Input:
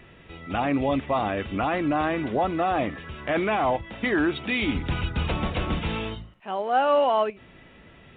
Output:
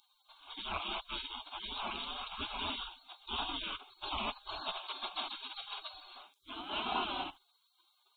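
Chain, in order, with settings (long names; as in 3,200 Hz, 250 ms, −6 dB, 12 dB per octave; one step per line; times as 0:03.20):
gate on every frequency bin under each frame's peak −30 dB weak
phaser with its sweep stopped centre 500 Hz, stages 6
level +13 dB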